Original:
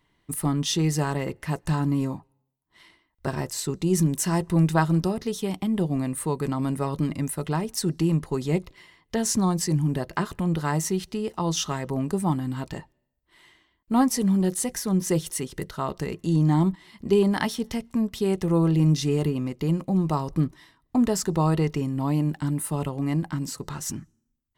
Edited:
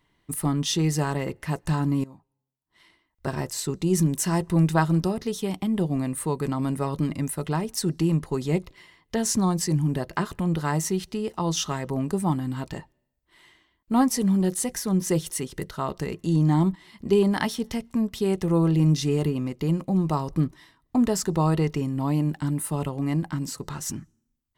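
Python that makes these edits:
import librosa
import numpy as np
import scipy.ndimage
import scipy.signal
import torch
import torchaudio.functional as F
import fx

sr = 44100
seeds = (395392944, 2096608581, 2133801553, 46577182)

y = fx.edit(x, sr, fx.fade_in_from(start_s=2.04, length_s=1.36, floor_db=-19.0), tone=tone)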